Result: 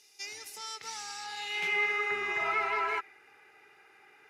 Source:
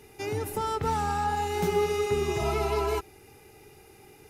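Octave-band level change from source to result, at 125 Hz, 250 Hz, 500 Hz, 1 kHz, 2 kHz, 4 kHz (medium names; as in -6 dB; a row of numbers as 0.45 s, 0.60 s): under -25 dB, -18.0 dB, -13.5 dB, -6.0 dB, +7.5 dB, +1.0 dB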